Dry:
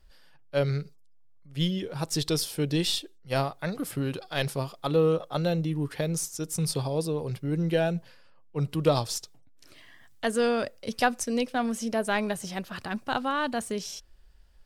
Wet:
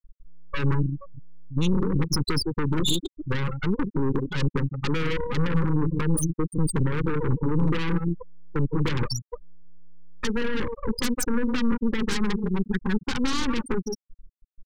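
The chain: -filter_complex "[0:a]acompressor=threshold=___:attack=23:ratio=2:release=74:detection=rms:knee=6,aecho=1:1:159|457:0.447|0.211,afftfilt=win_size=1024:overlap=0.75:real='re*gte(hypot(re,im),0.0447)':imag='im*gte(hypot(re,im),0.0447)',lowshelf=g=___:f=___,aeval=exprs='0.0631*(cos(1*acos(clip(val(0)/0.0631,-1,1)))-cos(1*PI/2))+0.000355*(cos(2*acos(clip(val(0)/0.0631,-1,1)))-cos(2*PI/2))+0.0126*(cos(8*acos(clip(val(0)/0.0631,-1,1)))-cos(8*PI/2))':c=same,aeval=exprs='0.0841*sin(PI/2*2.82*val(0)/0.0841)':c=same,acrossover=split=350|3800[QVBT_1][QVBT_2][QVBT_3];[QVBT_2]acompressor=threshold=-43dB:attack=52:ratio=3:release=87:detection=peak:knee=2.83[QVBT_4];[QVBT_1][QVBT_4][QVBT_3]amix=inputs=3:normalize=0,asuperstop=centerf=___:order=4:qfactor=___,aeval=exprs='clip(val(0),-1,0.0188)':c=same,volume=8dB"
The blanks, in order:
-45dB, -4, 100, 670, 1.5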